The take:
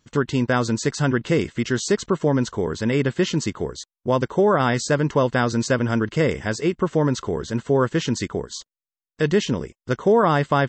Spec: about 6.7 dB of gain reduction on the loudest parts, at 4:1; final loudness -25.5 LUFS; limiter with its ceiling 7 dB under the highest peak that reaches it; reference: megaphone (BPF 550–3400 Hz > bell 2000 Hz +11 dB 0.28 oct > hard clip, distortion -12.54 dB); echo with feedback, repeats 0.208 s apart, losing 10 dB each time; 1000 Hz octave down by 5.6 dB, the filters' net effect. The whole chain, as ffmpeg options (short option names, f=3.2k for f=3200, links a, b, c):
-af "equalizer=f=1k:t=o:g=-7,acompressor=threshold=-23dB:ratio=4,alimiter=limit=-19.5dB:level=0:latency=1,highpass=550,lowpass=3.4k,equalizer=f=2k:t=o:w=0.28:g=11,aecho=1:1:208|416|624|832:0.316|0.101|0.0324|0.0104,asoftclip=type=hard:threshold=-28.5dB,volume=11dB"